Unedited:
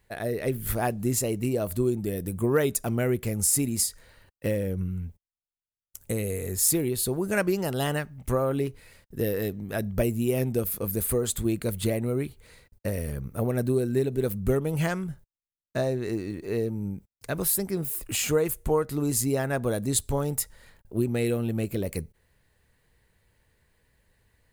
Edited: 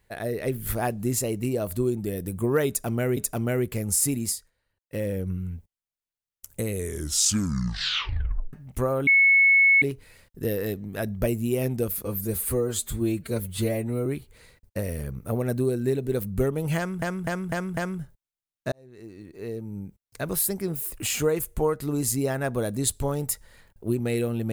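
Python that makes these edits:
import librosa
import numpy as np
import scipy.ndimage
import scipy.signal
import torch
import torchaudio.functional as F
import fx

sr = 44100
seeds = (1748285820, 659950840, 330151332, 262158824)

y = fx.edit(x, sr, fx.repeat(start_s=2.68, length_s=0.49, count=2),
    fx.fade_down_up(start_s=3.73, length_s=0.86, db=-21.5, fade_s=0.29),
    fx.tape_stop(start_s=6.21, length_s=1.83),
    fx.insert_tone(at_s=8.58, length_s=0.75, hz=2200.0, db=-14.0),
    fx.stretch_span(start_s=10.81, length_s=1.34, factor=1.5),
    fx.repeat(start_s=14.86, length_s=0.25, count=5),
    fx.fade_in_span(start_s=15.81, length_s=1.59), tone=tone)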